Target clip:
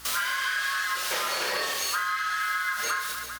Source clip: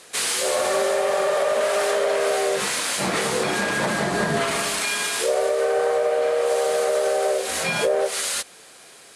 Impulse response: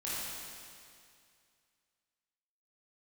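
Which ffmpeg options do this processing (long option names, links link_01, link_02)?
-filter_complex "[0:a]bandreject=frequency=50:width_type=h:width=6,bandreject=frequency=100:width_type=h:width=6,bandreject=frequency=150:width_type=h:width=6,bandreject=frequency=200:width_type=h:width=6,bandreject=frequency=250:width_type=h:width=6,bandreject=frequency=300:width_type=h:width=6,bandreject=frequency=350:width_type=h:width=6,bandreject=frequency=400:width_type=h:width=6,acrossover=split=1900[link_01][link_02];[link_02]asoftclip=type=hard:threshold=-28.5dB[link_03];[link_01][link_03]amix=inputs=2:normalize=0,aresample=16000,aresample=44100,asetrate=119070,aresample=44100,aeval=exprs='val(0)+0.00178*(sin(2*PI*60*n/s)+sin(2*PI*2*60*n/s)/2+sin(2*PI*3*60*n/s)/3+sin(2*PI*4*60*n/s)/4+sin(2*PI*5*60*n/s)/5)':channel_layout=same,aecho=1:1:30|75|142.5|243.8|395.6:0.631|0.398|0.251|0.158|0.1,acompressor=threshold=-27dB:ratio=12,volume=2dB"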